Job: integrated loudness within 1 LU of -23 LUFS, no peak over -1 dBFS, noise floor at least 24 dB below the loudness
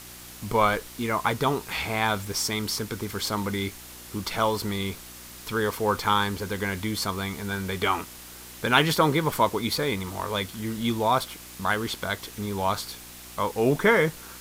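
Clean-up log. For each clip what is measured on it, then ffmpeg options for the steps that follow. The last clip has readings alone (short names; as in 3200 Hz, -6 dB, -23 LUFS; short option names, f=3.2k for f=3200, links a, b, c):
hum 60 Hz; harmonics up to 360 Hz; hum level -51 dBFS; noise floor -44 dBFS; noise floor target -51 dBFS; loudness -26.5 LUFS; peak -3.0 dBFS; loudness target -23.0 LUFS
-> -af "bandreject=f=60:t=h:w=4,bandreject=f=120:t=h:w=4,bandreject=f=180:t=h:w=4,bandreject=f=240:t=h:w=4,bandreject=f=300:t=h:w=4,bandreject=f=360:t=h:w=4"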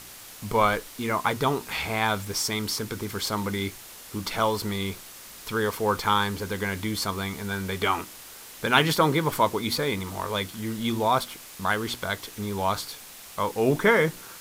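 hum none; noise floor -45 dBFS; noise floor target -51 dBFS
-> -af "afftdn=nr=6:nf=-45"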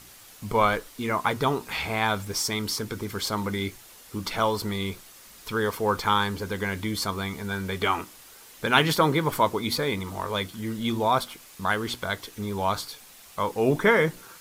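noise floor -49 dBFS; noise floor target -51 dBFS
-> -af "afftdn=nr=6:nf=-49"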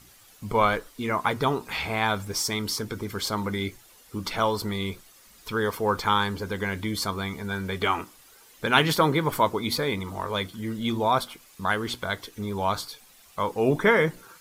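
noise floor -54 dBFS; loudness -26.5 LUFS; peak -3.0 dBFS; loudness target -23.0 LUFS
-> -af "volume=3.5dB,alimiter=limit=-1dB:level=0:latency=1"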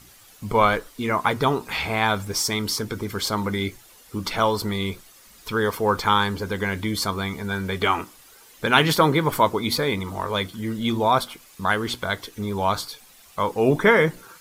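loudness -23.0 LUFS; peak -1.0 dBFS; noise floor -51 dBFS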